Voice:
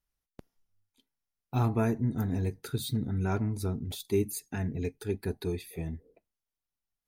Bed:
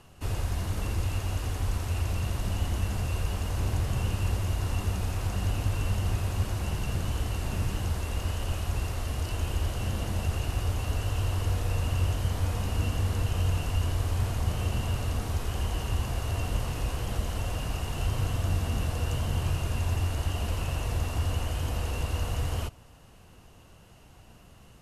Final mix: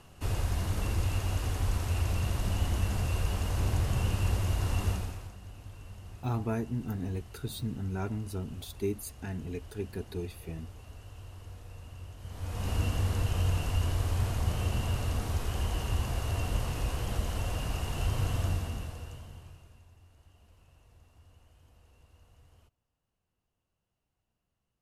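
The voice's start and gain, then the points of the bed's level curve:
4.70 s, -4.5 dB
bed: 4.91 s -0.5 dB
5.38 s -18.5 dB
12.16 s -18.5 dB
12.69 s -1.5 dB
18.44 s -1.5 dB
19.92 s -30.5 dB

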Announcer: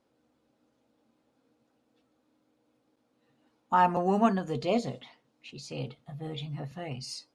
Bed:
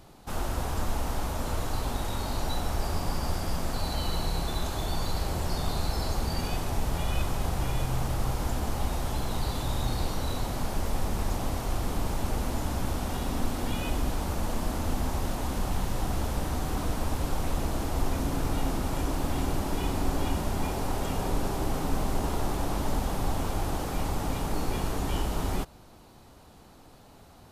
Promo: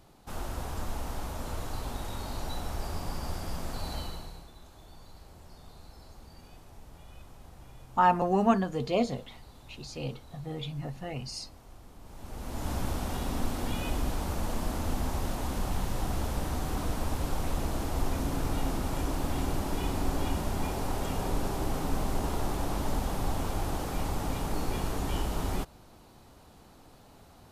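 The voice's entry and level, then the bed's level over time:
4.25 s, +0.5 dB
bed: 3.98 s -5.5 dB
4.52 s -21.5 dB
11.99 s -21.5 dB
12.7 s -2 dB

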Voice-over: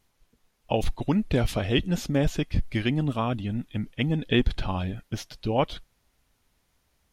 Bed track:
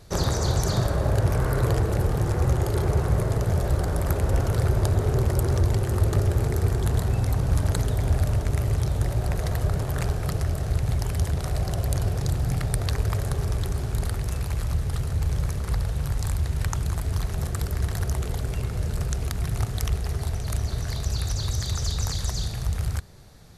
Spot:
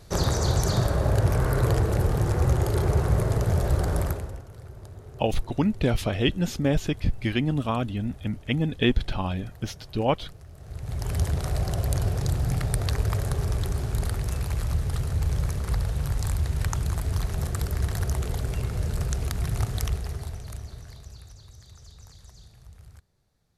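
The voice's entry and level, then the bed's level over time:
4.50 s, +0.5 dB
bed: 4.02 s 0 dB
4.46 s -21 dB
10.5 s -21 dB
11.13 s -0.5 dB
19.78 s -0.5 dB
21.45 s -22 dB

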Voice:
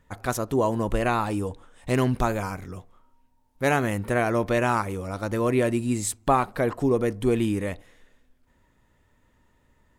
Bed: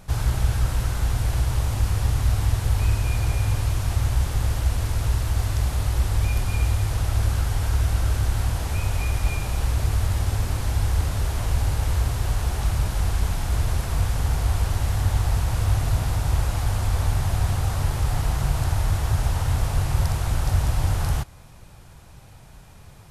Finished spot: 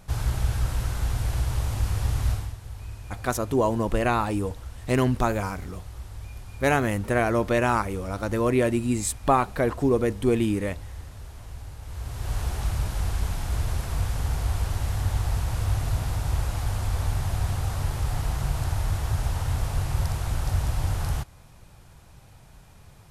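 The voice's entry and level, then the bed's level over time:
3.00 s, +0.5 dB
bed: 2.31 s -3.5 dB
2.57 s -17 dB
11.81 s -17 dB
12.36 s -4 dB

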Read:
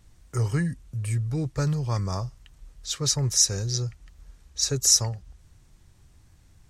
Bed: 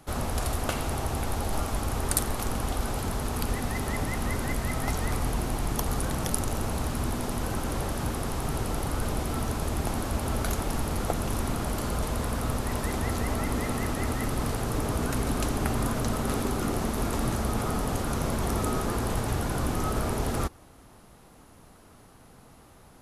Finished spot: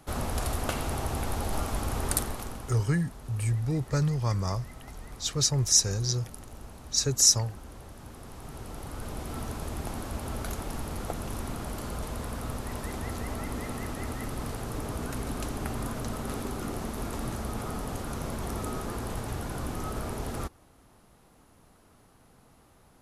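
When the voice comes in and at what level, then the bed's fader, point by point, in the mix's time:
2.35 s, -1.0 dB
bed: 2.15 s -1.5 dB
2.92 s -17 dB
7.92 s -17 dB
9.38 s -6 dB

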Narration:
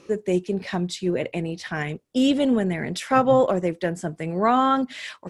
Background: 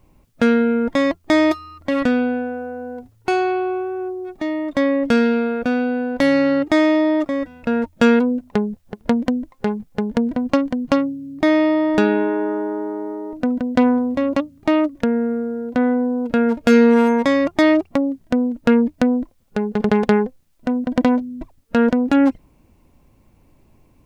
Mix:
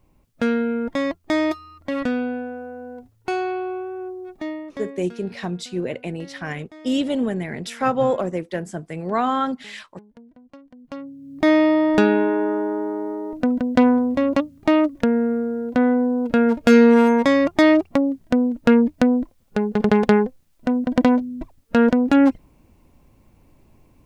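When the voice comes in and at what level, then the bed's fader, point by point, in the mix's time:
4.70 s, -2.0 dB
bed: 4.48 s -5.5 dB
5.2 s -28 dB
10.63 s -28 dB
11.48 s 0 dB

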